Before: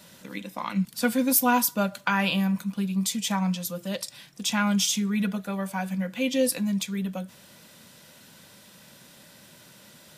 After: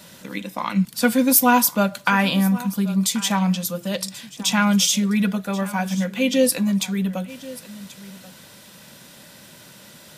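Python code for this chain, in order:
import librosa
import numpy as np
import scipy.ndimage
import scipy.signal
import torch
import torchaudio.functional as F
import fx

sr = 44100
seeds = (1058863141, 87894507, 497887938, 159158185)

y = fx.peak_eq(x, sr, hz=2700.0, db=-9.0, octaves=0.21, at=(2.22, 3.0))
y = y + 10.0 ** (-18.0 / 20.0) * np.pad(y, (int(1084 * sr / 1000.0), 0))[:len(y)]
y = F.gain(torch.from_numpy(y), 6.0).numpy()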